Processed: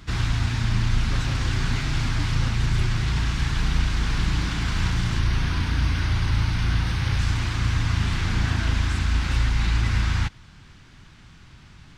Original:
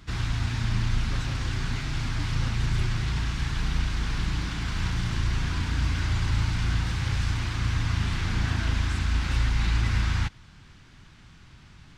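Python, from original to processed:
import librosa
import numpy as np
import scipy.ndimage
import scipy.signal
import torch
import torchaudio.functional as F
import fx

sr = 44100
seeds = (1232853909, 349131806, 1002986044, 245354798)

p1 = fx.peak_eq(x, sr, hz=7400.0, db=-13.0, octaves=0.2, at=(5.19, 7.19))
p2 = fx.rider(p1, sr, range_db=10, speed_s=0.5)
p3 = p1 + (p2 * 10.0 ** (3.0 / 20.0))
y = p3 * 10.0 ** (-4.0 / 20.0)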